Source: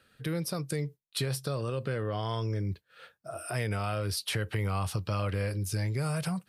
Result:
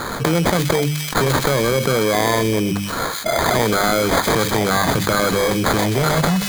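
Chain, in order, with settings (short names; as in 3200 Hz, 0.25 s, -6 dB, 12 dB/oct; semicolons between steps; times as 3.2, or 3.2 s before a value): HPF 150 Hz 24 dB/oct; high shelf 4900 Hz +10.5 dB; notches 50/100/150/200/250/300 Hz; sample-and-hold 16×; thin delay 0.127 s, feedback 39%, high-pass 2700 Hz, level -9 dB; maximiser +20 dB; fast leveller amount 70%; gain -7.5 dB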